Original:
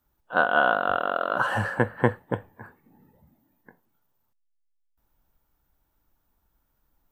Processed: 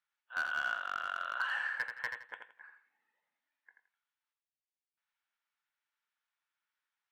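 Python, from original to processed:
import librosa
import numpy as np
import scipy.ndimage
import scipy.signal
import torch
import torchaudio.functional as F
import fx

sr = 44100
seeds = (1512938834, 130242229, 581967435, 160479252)

p1 = fx.rider(x, sr, range_db=10, speed_s=0.5)
p2 = fx.ladder_bandpass(p1, sr, hz=2500.0, resonance_pct=30)
p3 = np.clip(10.0 ** (31.0 / 20.0) * p2, -1.0, 1.0) / 10.0 ** (31.0 / 20.0)
p4 = p3 + fx.echo_feedback(p3, sr, ms=84, feedback_pct=25, wet_db=-6, dry=0)
y = F.gain(torch.from_numpy(p4), 4.0).numpy()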